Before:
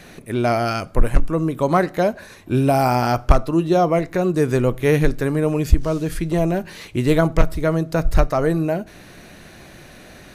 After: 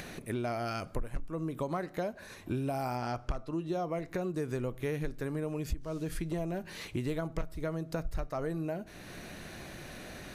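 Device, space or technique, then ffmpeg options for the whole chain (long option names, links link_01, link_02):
upward and downward compression: -filter_complex "[0:a]acompressor=mode=upward:threshold=-33dB:ratio=2.5,acompressor=threshold=-26dB:ratio=5,asettb=1/sr,asplit=3[link_01][link_02][link_03];[link_01]atrim=end=2.974[link_04];[link_02]atrim=start=2.97:end=3.68,asetpts=PTS-STARTPTS,afade=type=in:duration=0.004:curve=qsin,afade=type=out:start_time=0.706:duration=0.004:curve=qsin,lowpass=8500[link_05];[link_03]atrim=start=3.676[link_06];[link_04][link_05]acrossfade=duration=0.004:curve1=hsin:curve2=qsin[link_07];[link_07][link_06]acrossfade=duration=0.004:curve1=qsin:curve2=hsin,volume=-6dB"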